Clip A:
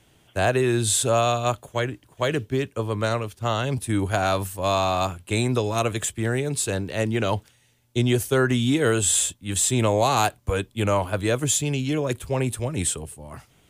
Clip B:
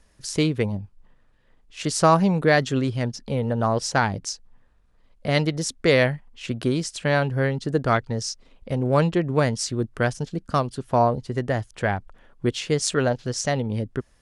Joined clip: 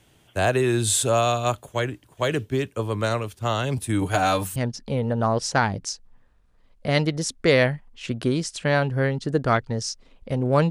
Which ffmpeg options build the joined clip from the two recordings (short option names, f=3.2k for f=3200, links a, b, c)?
-filter_complex "[0:a]asettb=1/sr,asplit=3[a][b][c];[a]atrim=end=4.014[d];[b]atrim=start=4.01:end=4.56,asetpts=PTS-STARTPTS,afade=t=in:d=0.004:c=qsin,afade=t=out:st=0.546:d=0.004:c=qsin,aecho=1:1:6.6:0.7,atrim=end_sample=24255[e];[c]atrim=start=4.556[f];[d][e]acrossfade=d=0.004:c1=hsin:c2=qsin[g];[g][f]acrossfade=d=0.004:c1=qsin:c2=hsin,apad=whole_dur=10.7,atrim=end=10.7,atrim=end=4.562[h];[1:a]atrim=start=2.958:end=9.1[i];[h][i]acrossfade=d=0.004:c1=hsin:c2=hsin"